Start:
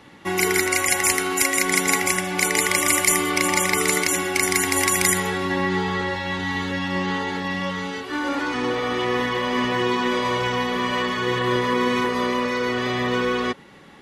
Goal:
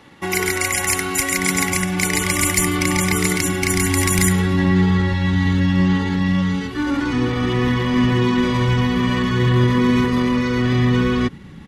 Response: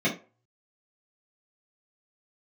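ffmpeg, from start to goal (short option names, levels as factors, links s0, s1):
-af "asubboost=boost=8.5:cutoff=190,atempo=1.2,acontrast=25,volume=0.631"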